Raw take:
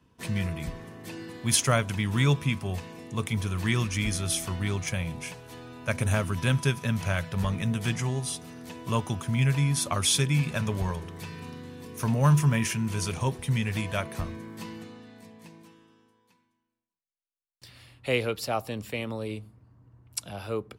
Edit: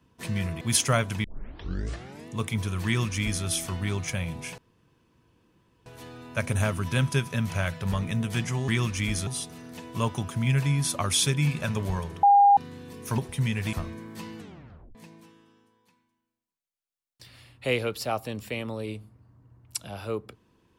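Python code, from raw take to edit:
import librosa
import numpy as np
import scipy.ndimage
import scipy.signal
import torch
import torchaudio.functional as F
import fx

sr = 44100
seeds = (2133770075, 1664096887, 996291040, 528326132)

y = fx.edit(x, sr, fx.cut(start_s=0.61, length_s=0.79),
    fx.tape_start(start_s=2.03, length_s=1.04),
    fx.duplicate(start_s=3.65, length_s=0.59, to_s=8.19),
    fx.insert_room_tone(at_s=5.37, length_s=1.28),
    fx.bleep(start_s=11.15, length_s=0.34, hz=807.0, db=-13.0),
    fx.cut(start_s=12.1, length_s=1.18),
    fx.cut(start_s=13.83, length_s=0.32),
    fx.tape_stop(start_s=14.81, length_s=0.56), tone=tone)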